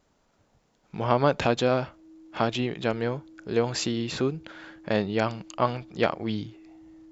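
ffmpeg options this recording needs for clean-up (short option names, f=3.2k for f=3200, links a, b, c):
-af "bandreject=f=320:w=30"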